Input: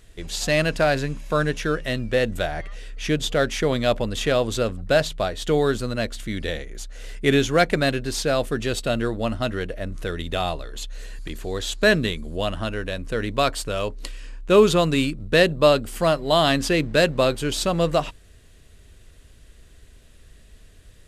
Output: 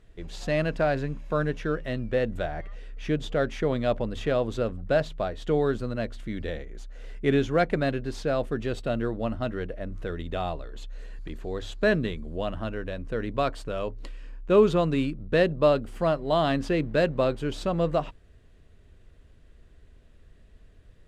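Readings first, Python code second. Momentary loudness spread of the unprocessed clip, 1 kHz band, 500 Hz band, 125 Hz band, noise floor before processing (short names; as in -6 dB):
13 LU, -5.5 dB, -4.0 dB, -4.0 dB, -50 dBFS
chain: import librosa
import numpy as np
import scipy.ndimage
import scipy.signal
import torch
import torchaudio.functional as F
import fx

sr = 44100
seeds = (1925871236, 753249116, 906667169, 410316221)

y = fx.lowpass(x, sr, hz=1300.0, slope=6)
y = fx.hum_notches(y, sr, base_hz=50, count=2)
y = F.gain(torch.from_numpy(y), -3.5).numpy()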